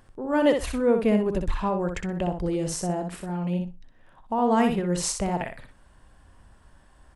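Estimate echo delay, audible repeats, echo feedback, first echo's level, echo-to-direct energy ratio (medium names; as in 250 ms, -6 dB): 62 ms, 2, 16%, -6.0 dB, -6.0 dB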